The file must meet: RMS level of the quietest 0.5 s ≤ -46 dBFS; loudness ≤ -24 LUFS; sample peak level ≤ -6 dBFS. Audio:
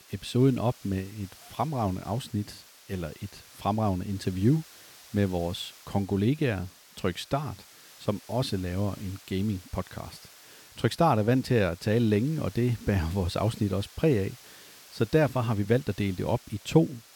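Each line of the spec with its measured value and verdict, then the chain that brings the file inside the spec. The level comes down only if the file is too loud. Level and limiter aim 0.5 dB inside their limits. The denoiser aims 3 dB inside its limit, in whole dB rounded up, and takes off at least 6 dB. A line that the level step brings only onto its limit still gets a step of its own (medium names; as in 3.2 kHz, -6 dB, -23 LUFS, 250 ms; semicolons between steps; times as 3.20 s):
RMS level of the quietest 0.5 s -52 dBFS: pass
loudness -28.5 LUFS: pass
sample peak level -8.0 dBFS: pass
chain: none needed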